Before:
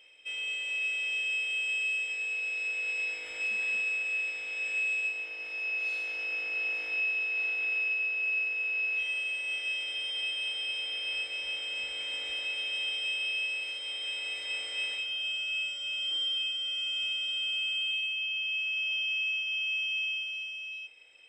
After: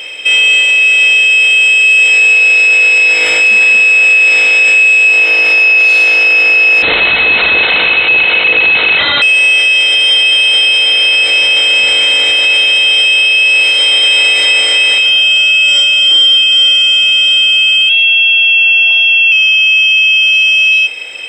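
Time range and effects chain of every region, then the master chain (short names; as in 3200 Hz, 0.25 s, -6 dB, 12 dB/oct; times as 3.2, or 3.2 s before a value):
6.82–9.22 self-modulated delay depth 0.74 ms + brick-wall FIR low-pass 4200 Hz
17.89–19.32 frequency shift +110 Hz + air absorption 240 m
whole clip: HPF 81 Hz 6 dB/oct; maximiser +34 dB; gain -1 dB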